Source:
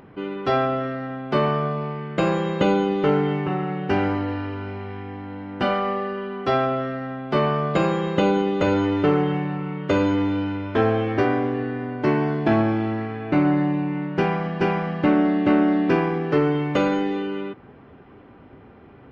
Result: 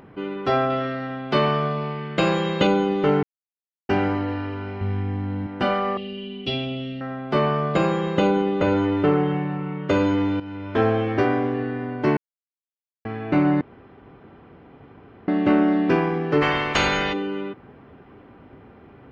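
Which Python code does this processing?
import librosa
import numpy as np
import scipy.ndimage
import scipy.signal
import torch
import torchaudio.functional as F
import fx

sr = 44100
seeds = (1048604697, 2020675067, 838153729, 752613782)

y = fx.peak_eq(x, sr, hz=3900.0, db=7.5, octaves=1.7, at=(0.7, 2.67))
y = fx.bass_treble(y, sr, bass_db=12, treble_db=4, at=(4.81, 5.47))
y = fx.curve_eq(y, sr, hz=(250.0, 760.0, 1200.0, 1700.0, 2900.0, 6800.0), db=(0, -15, -24, -19, 12, -7), at=(5.97, 7.01))
y = fx.high_shelf(y, sr, hz=5500.0, db=-11.0, at=(8.27, 9.89))
y = fx.spec_clip(y, sr, under_db=26, at=(16.41, 17.12), fade=0.02)
y = fx.edit(y, sr, fx.silence(start_s=3.23, length_s=0.66),
    fx.fade_in_from(start_s=10.4, length_s=0.42, floor_db=-12.5),
    fx.silence(start_s=12.17, length_s=0.88),
    fx.room_tone_fill(start_s=13.61, length_s=1.67), tone=tone)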